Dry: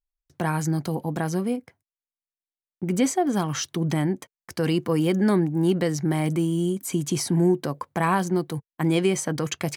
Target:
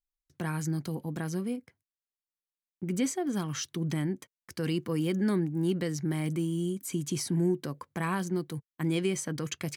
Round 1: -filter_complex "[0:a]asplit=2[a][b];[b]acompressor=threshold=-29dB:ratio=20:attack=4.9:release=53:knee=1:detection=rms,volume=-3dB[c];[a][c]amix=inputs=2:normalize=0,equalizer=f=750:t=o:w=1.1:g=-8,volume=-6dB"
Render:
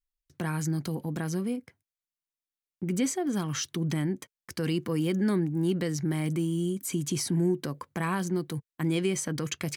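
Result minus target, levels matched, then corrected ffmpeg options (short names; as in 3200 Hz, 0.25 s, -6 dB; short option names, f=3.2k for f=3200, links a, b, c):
compressor: peak gain reduction +15 dB
-af "equalizer=f=750:t=o:w=1.1:g=-8,volume=-6dB"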